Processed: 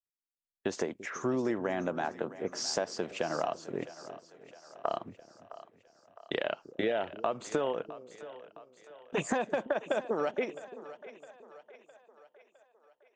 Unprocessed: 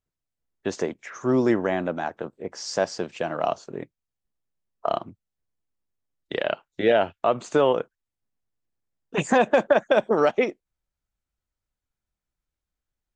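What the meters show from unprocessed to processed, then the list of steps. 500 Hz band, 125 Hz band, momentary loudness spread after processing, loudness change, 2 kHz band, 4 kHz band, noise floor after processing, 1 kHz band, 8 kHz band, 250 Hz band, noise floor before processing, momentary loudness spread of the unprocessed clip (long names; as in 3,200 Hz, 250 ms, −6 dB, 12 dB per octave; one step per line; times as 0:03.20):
−10.0 dB, −9.5 dB, 20 LU, −10.0 dB, −8.5 dB, −5.0 dB, −84 dBFS, −9.5 dB, −2.0 dB, −9.0 dB, below −85 dBFS, 14 LU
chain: noise gate with hold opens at −44 dBFS
low-shelf EQ 100 Hz −7 dB
downward compressor 6 to 1, threshold −28 dBFS, peak gain reduction 14 dB
on a send: echo with a time of its own for lows and highs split 470 Hz, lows 339 ms, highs 660 ms, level −15 dB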